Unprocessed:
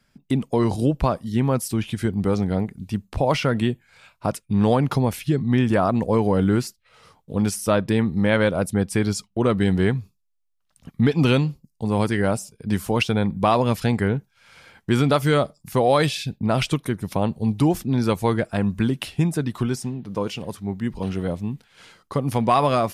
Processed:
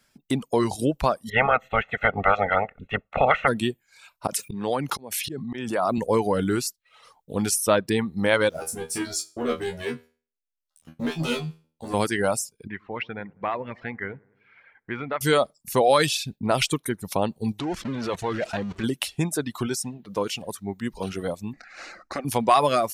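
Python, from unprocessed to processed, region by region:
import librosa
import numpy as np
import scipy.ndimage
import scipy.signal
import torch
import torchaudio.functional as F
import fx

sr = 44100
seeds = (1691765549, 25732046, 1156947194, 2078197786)

y = fx.spec_clip(x, sr, under_db=27, at=(1.28, 3.47), fade=0.02)
y = fx.cheby2_lowpass(y, sr, hz=4600.0, order=4, stop_db=40, at=(1.28, 3.47), fade=0.02)
y = fx.comb(y, sr, ms=1.5, depth=0.87, at=(1.28, 3.47), fade=0.02)
y = fx.chain(y, sr, fx.highpass(hz=120.0, slope=12),
    fx.auto_swell(attack_ms=447.0),
    fx.pre_swell(db_per_s=24.0), at=(4.27, 5.98))
y = fx.chain(y, sr, fx.leveller(passes=2),
    fx.comb_fb(f0_hz=80.0, decay_s=0.39, harmonics='all', damping=0.0, mix_pct=100), at=(8.49, 11.94))
y = fx.chain(y, sr, fx.ladder_lowpass(hz=2200.0, resonance_pct=65),
    fx.echo_wet_lowpass(ms=100, feedback_pct=59, hz=1100.0, wet_db=-15.5), at=(12.67, 15.21))
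y = fx.chain(y, sr, fx.zero_step(step_db=-22.5),
    fx.lowpass(hz=3600.0, slope=12),
    fx.level_steps(step_db=12), at=(17.59, 18.84))
y = fx.chain(y, sr, fx.air_absorb(metres=200.0),
    fx.fixed_phaser(hz=650.0, stages=8),
    fx.spectral_comp(ratio=2.0), at=(21.53, 22.25))
y = fx.notch(y, sr, hz=4900.0, q=23.0)
y = fx.dereverb_blind(y, sr, rt60_s=0.87)
y = fx.bass_treble(y, sr, bass_db=-8, treble_db=6)
y = F.gain(torch.from_numpy(y), 1.0).numpy()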